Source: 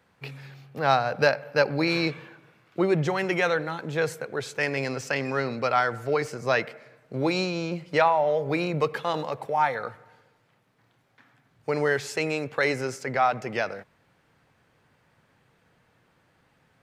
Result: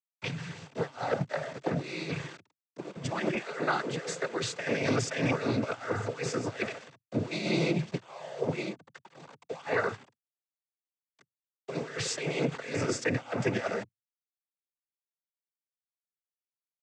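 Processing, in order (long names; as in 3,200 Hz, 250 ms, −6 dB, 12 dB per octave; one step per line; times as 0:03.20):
compressor whose output falls as the input rises −30 dBFS, ratio −0.5
0:08.58–0:09.62: duck −18 dB, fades 0.17 s
centre clipping without the shift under −41.5 dBFS
cochlear-implant simulation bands 16
0:03.35–0:04.39: high-pass filter 240 Hz 12 dB per octave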